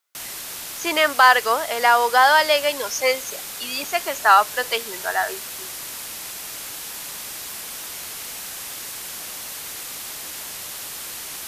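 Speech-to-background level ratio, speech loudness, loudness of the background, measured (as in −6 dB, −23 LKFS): 12.0 dB, −18.5 LKFS, −30.5 LKFS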